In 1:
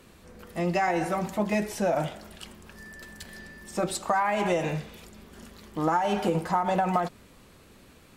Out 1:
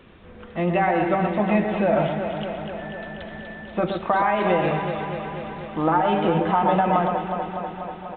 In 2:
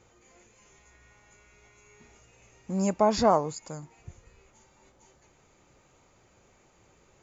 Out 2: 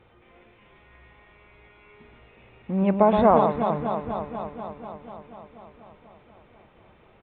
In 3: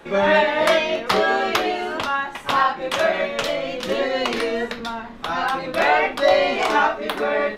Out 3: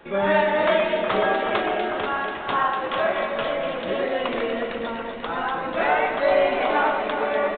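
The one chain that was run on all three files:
dynamic EQ 3000 Hz, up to -3 dB, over -35 dBFS, Q 0.94; echo with dull and thin repeats by turns 0.122 s, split 1900 Hz, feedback 85%, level -5.5 dB; downsampling 8000 Hz; match loudness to -23 LUFS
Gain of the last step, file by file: +4.5, +4.0, -4.0 dB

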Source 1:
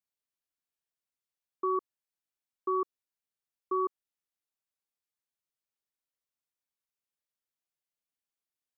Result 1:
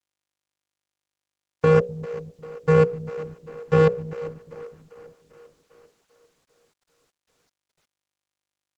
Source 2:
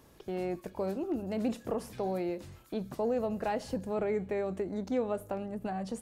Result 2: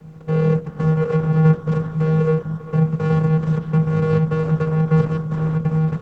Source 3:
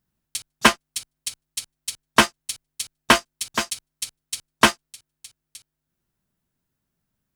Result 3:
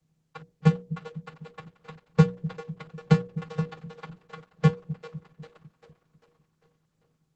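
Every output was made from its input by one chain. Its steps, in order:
FFT order left unsorted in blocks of 64 samples; Bessel low-pass 1500 Hz, order 2; wow and flutter 42 cents; vocoder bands 8, square 158 Hz; notches 60/120/180/240/300/360/420/480/540 Hz; split-band echo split 330 Hz, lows 0.249 s, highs 0.396 s, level -14 dB; Opus 12 kbps 48000 Hz; normalise peaks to -6 dBFS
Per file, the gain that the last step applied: +23.5, +23.5, +8.0 dB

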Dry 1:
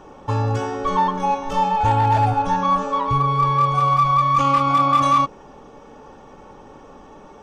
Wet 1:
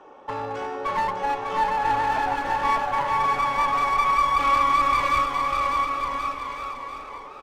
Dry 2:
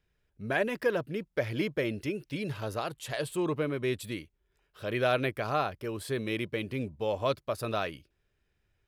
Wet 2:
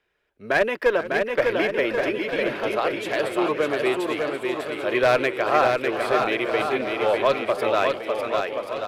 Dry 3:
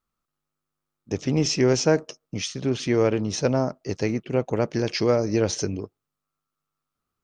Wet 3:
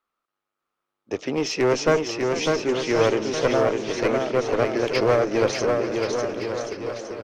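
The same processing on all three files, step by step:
three-band isolator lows -20 dB, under 320 Hz, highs -12 dB, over 3600 Hz; one-sided clip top -24.5 dBFS; on a send: bouncing-ball echo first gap 0.6 s, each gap 0.8×, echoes 5; on the sum: warbling echo 0.445 s, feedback 64%, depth 180 cents, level -15 dB; match loudness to -23 LUFS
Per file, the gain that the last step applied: -2.5, +10.0, +5.0 dB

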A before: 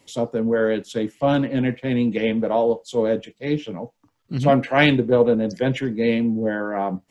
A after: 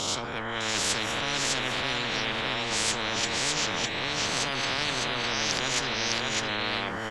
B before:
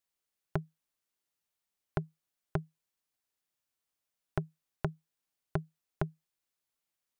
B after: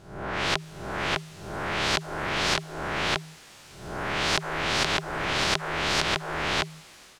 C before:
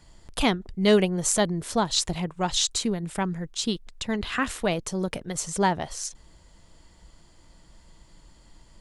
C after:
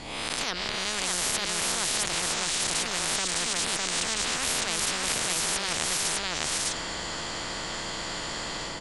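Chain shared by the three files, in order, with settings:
spectral swells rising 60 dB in 0.59 s; dynamic EQ 4900 Hz, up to +4 dB, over -39 dBFS, Q 1; reverse; compressor, threshold -27 dBFS; reverse; limiter -22.5 dBFS; AGC gain up to 12 dB; air absorption 70 m; on a send: echo 0.606 s -5.5 dB; on the sum: spectral compressor 10:1; match loudness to -27 LUFS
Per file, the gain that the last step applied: -2.0, +6.0, 0.0 dB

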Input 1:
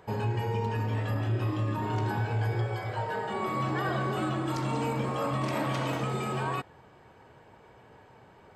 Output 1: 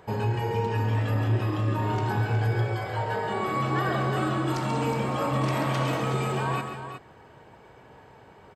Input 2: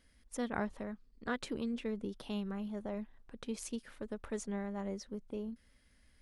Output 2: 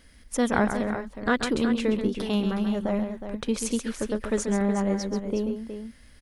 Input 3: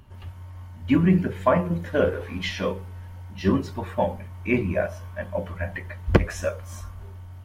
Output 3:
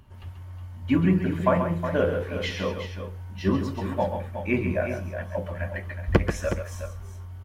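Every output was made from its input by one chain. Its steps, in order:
tapped delay 0.135/0.366 s -8/-9.5 dB; match loudness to -27 LUFS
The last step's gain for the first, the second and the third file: +2.5, +13.0, -2.5 dB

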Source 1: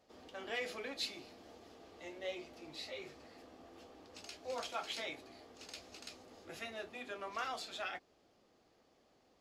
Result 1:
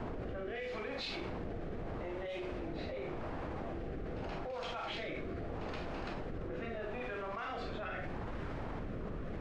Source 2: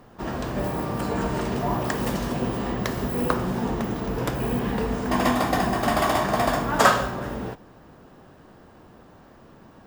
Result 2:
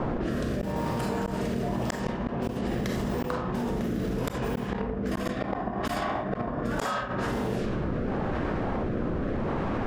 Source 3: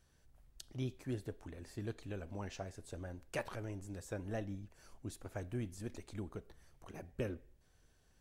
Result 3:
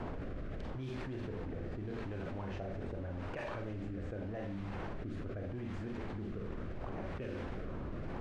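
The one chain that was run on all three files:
Schroeder reverb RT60 0.41 s, combs from 30 ms, DRR 2.5 dB; added noise pink -51 dBFS; rotary speaker horn 0.8 Hz; flipped gate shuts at -15 dBFS, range -41 dB; low-pass opened by the level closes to 1000 Hz, open at -27.5 dBFS; fast leveller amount 100%; gain -6 dB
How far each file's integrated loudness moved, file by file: +2.5, -5.5, +2.5 LU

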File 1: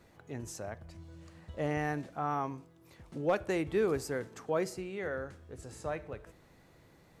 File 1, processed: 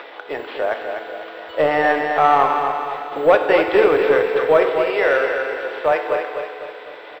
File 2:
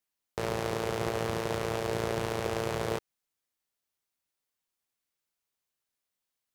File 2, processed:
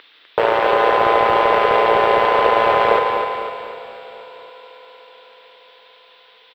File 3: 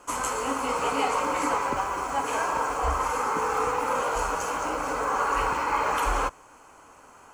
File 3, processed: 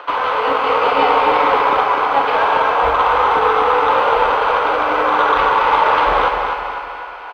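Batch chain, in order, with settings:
CVSD 64 kbps; in parallel at +2 dB: compressor, threshold -34 dBFS; on the sum: FDN reverb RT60 3 s, high-frequency decay 1×, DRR 5 dB; careless resampling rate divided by 6×, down filtered, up zero stuff; HPF 440 Hz 24 dB/oct; soft clip -5.5 dBFS; on a send: feedback echo 0.251 s, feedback 47%, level -6.5 dB; on the sum: upward compressor, threshold -32 dBFS; added noise violet -45 dBFS; elliptic low-pass 3600 Hz, stop band 50 dB; normalise peaks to -1.5 dBFS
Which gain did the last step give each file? +15.0, +16.5, +9.0 dB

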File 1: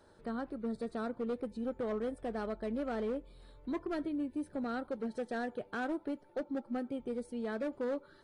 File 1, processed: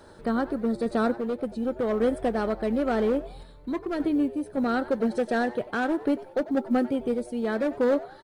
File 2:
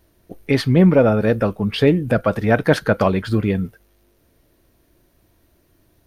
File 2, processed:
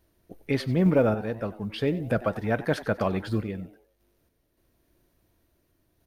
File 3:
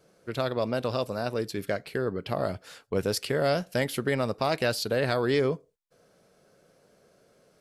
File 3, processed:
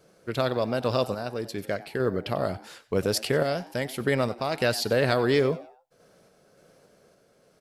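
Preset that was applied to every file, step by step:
short-mantissa float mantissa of 6-bit; random-step tremolo; frequency-shifting echo 94 ms, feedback 35%, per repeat +120 Hz, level -18 dB; match loudness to -27 LUFS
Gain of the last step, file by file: +13.5, -7.5, +4.0 dB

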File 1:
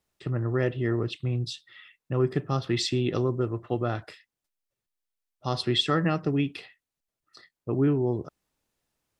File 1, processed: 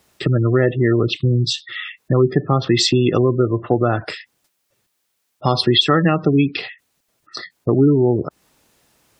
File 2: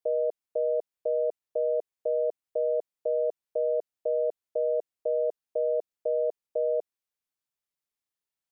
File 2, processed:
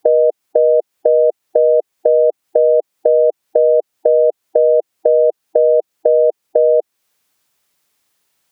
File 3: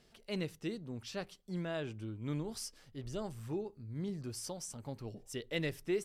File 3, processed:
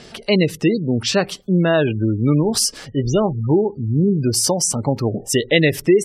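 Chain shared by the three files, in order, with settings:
HPF 97 Hz 6 dB/oct; spectral gate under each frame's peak -25 dB strong; compressor 2:1, threshold -41 dBFS; normalise peaks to -1.5 dBFS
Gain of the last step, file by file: +21.0, +24.5, +26.5 dB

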